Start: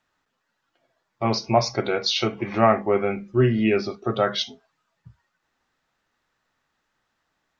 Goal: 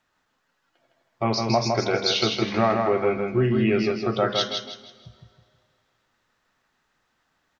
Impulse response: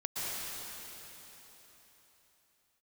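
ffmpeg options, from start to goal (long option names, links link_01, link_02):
-filter_complex "[0:a]acompressor=threshold=-23dB:ratio=2,aecho=1:1:160|320|480|640:0.631|0.208|0.0687|0.0227,asplit=2[link_01][link_02];[1:a]atrim=start_sample=2205,asetrate=70560,aresample=44100[link_03];[link_02][link_03]afir=irnorm=-1:irlink=0,volume=-22dB[link_04];[link_01][link_04]amix=inputs=2:normalize=0,volume=1.5dB"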